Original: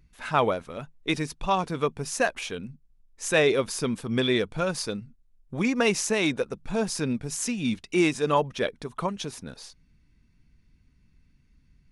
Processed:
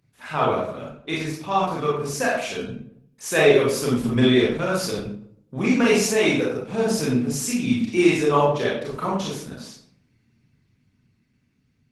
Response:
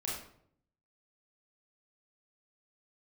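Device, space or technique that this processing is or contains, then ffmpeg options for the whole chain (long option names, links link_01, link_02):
far-field microphone of a smart speaker: -filter_complex "[1:a]atrim=start_sample=2205[link_01];[0:a][link_01]afir=irnorm=-1:irlink=0,highpass=frequency=100:width=0.5412,highpass=frequency=100:width=1.3066,dynaudnorm=framelen=860:gausssize=5:maxgain=4.5dB" -ar 48000 -c:a libopus -b:a 16k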